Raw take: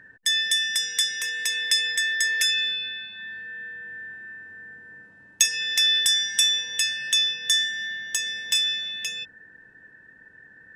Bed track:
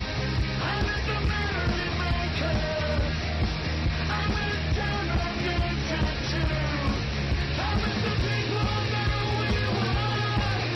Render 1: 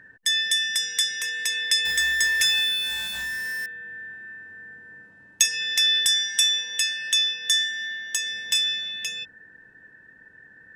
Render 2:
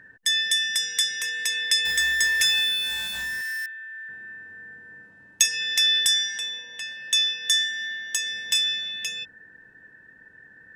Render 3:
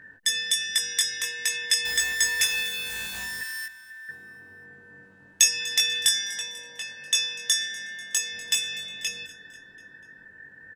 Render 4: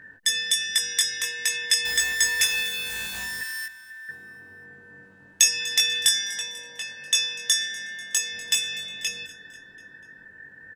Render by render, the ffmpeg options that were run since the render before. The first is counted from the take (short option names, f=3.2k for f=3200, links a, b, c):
-filter_complex "[0:a]asettb=1/sr,asplit=3[a][b][c];[a]atrim=end=1.854[d];[b]atrim=start=1.85:end=3.66,asetpts=PTS-STARTPTS,afade=t=in:d=0.004:c=qsin,afade=t=out:st=1.806:d=0.004:c=qsin,aeval=exprs='val(0)+0.5*0.0376*sgn(val(0))':c=same[e];[c]atrim=start=3.656[f];[d][e]acrossfade=d=0.004:c1=hsin:c2=qsin[g];[g][f]acrossfade=d=0.004:c1=qsin:c2=hsin,asettb=1/sr,asplit=3[h][i][j];[h]atrim=end=6.214[k];[i]atrim=start=6.21:end=8.31,asetpts=PTS-STARTPTS,afade=t=in:d=0.004:c=qsin,afade=t=out:st=2.096:d=0.004:c=qsin,highpass=f=280:p=1[l];[j]atrim=start=8.306[m];[k][l]acrossfade=d=0.004:c1=hsin:c2=qsin[n];[n][m]acrossfade=d=0.004:c1=qsin:c2=hsin"
-filter_complex "[0:a]asettb=1/sr,asplit=3[a][b][c];[a]atrim=end=3.414[d];[b]atrim=start=3.41:end=4.09,asetpts=PTS-STARTPTS,afade=t=in:d=0.004:c=qsin,afade=t=out:st=0.676:d=0.004:c=qsin,highpass=f=1.1k:w=0.5412,highpass=f=1.1k:w=1.3066[e];[c]atrim=start=4.086[f];[d][e]acrossfade=d=0.004:c1=hsin:c2=qsin[g];[g][f]acrossfade=d=0.004:c1=qsin:c2=hsin,asettb=1/sr,asplit=3[h][i][j];[h]atrim=end=6.384[k];[i]atrim=start=6.38:end=7.13,asetpts=PTS-STARTPTS,afade=t=in:d=0.004:c=qsin,afade=t=out:st=0.746:d=0.004:c=qsin,lowpass=f=1.1k:p=1[l];[j]atrim=start=7.126[m];[k][l]acrossfade=d=0.004:c1=hsin:c2=qsin[n];[n][m]acrossfade=d=0.004:c1=qsin:c2=hsin"
-filter_complex "[0:a]asplit=2[a][b];[b]adelay=21,volume=-3dB[c];[a][c]amix=inputs=2:normalize=0,aecho=1:1:245|490|735|980:0.106|0.0583|0.032|0.0176"
-af "volume=1.5dB,alimiter=limit=-3dB:level=0:latency=1"